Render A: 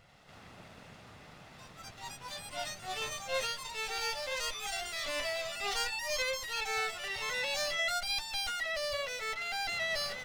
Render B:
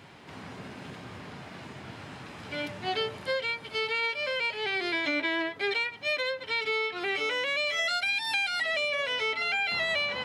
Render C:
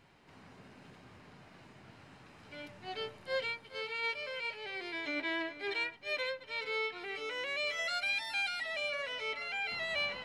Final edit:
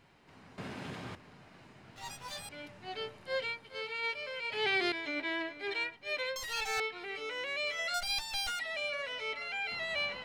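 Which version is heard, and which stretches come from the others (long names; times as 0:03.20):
C
0:00.58–0:01.15: punch in from B
0:01.96–0:02.49: punch in from A
0:04.52–0:04.92: punch in from B
0:06.36–0:06.80: punch in from A
0:07.94–0:08.59: punch in from A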